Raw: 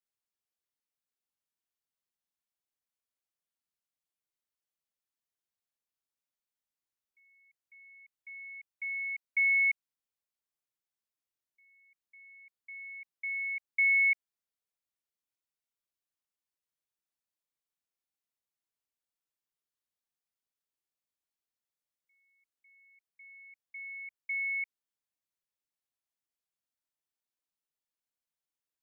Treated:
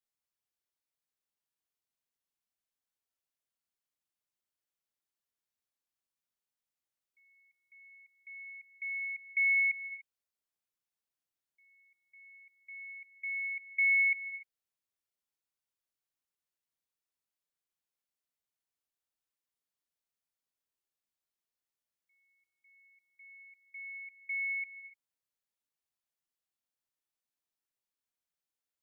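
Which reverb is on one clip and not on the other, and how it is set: gated-style reverb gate 310 ms rising, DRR 12 dB; trim -1.5 dB

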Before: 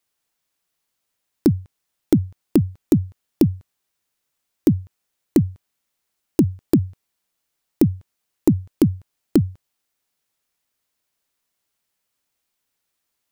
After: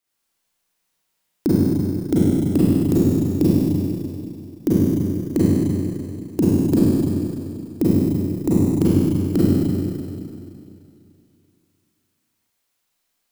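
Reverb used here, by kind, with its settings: Schroeder reverb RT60 2.6 s, combs from 33 ms, DRR -9 dB; trim -5.5 dB

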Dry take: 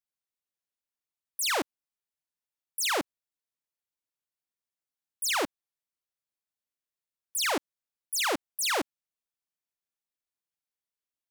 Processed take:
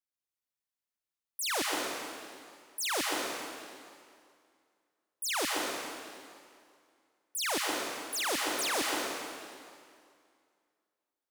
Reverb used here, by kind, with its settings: plate-style reverb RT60 2.2 s, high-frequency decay 0.9×, pre-delay 110 ms, DRR -1.5 dB; trim -5 dB

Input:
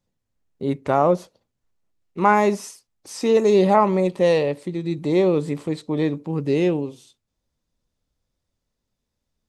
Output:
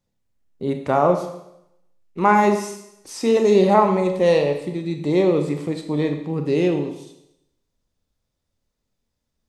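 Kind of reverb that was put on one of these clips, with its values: Schroeder reverb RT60 0.81 s, combs from 27 ms, DRR 5.5 dB

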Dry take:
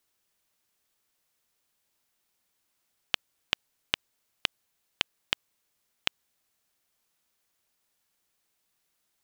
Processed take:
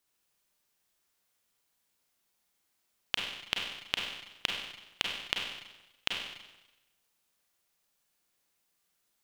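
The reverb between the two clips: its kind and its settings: Schroeder reverb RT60 1 s, combs from 32 ms, DRR 0 dB; trim -3.5 dB

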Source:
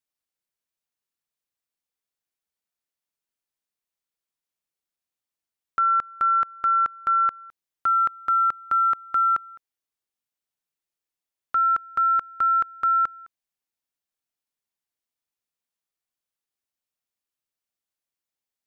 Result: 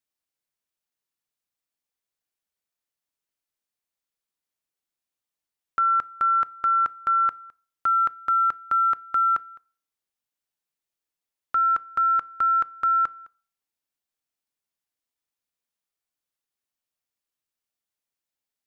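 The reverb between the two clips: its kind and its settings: FDN reverb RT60 0.47 s, low-frequency decay 0.9×, high-frequency decay 0.8×, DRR 18.5 dB

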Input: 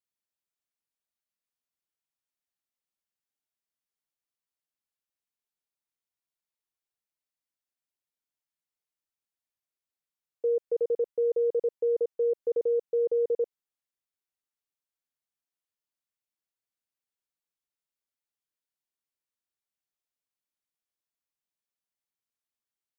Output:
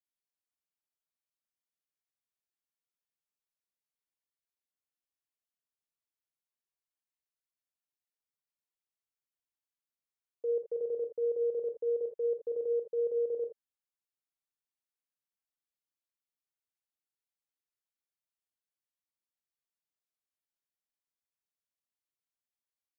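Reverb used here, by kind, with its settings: gated-style reverb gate 90 ms rising, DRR 5.5 dB; trim -8 dB

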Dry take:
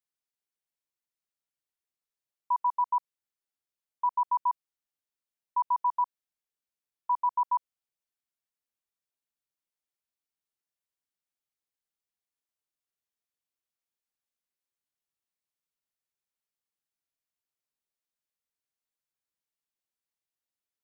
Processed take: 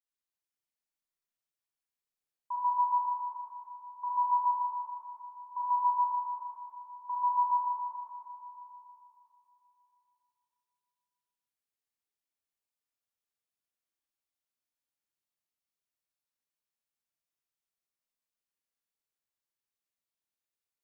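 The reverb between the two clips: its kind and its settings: Schroeder reverb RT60 3.3 s, combs from 27 ms, DRR -6 dB; trim -9 dB

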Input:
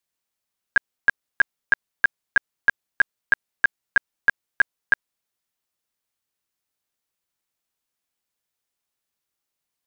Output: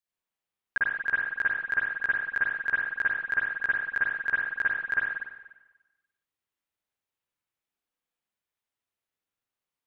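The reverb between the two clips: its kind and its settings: spring tank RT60 1.1 s, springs 46/56 ms, chirp 55 ms, DRR -6.5 dB; trim -11 dB

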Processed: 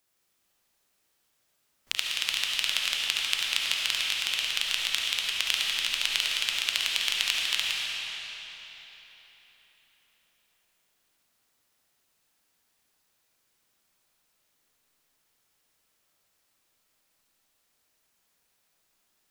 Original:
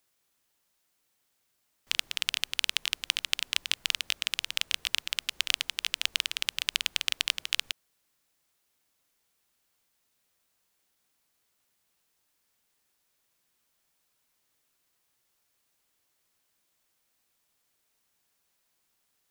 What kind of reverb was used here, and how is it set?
algorithmic reverb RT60 4.1 s, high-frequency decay 0.85×, pre-delay 30 ms, DRR -3 dB; trim -1 dB

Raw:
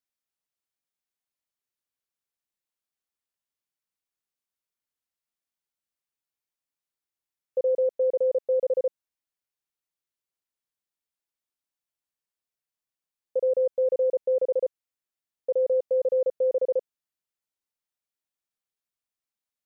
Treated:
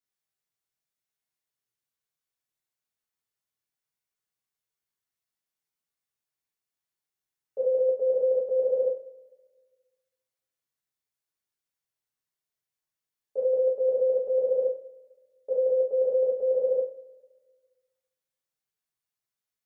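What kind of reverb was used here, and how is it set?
two-slope reverb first 0.4 s, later 1.6 s, from -22 dB, DRR -7.5 dB; trim -7.5 dB

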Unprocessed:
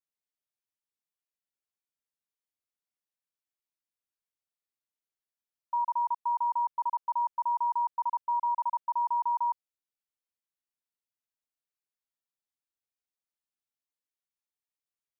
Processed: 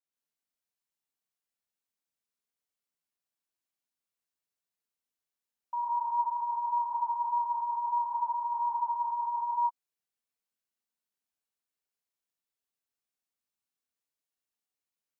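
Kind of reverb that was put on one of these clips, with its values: gated-style reverb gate 190 ms rising, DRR -5 dB; trim -5 dB

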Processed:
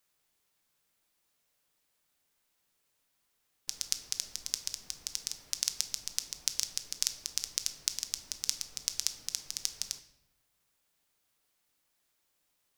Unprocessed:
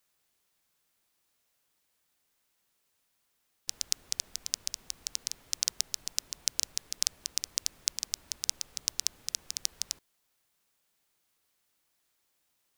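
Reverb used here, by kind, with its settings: simulated room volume 260 m³, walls mixed, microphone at 0.41 m; trim -1.5 dB

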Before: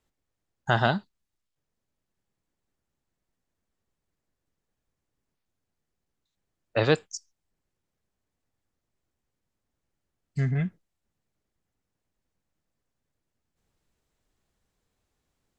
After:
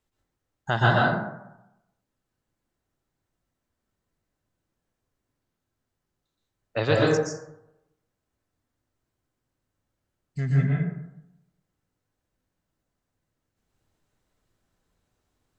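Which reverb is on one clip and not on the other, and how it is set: plate-style reverb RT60 0.88 s, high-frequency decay 0.4×, pre-delay 110 ms, DRR -4.5 dB; trim -2.5 dB

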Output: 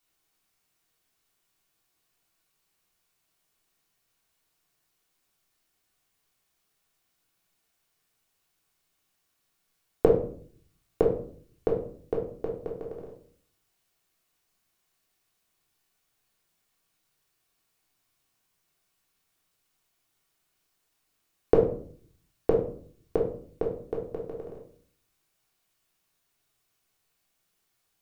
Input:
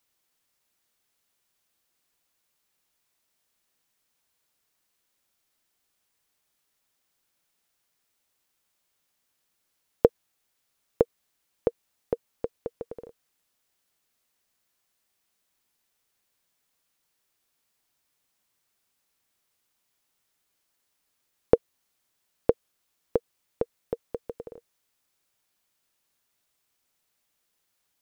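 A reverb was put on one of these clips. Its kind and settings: simulated room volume 570 m³, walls furnished, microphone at 3.4 m; trim -3.5 dB

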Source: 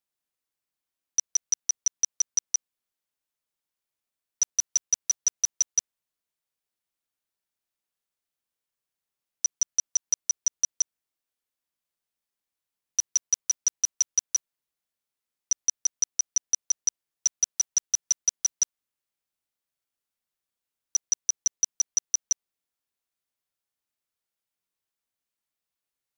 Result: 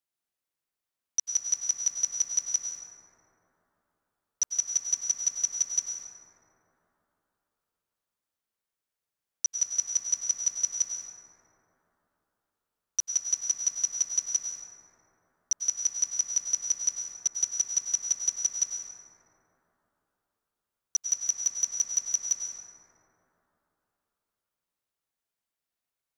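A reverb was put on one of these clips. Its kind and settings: plate-style reverb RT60 3.6 s, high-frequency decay 0.25×, pre-delay 85 ms, DRR -0.5 dB; trim -3 dB

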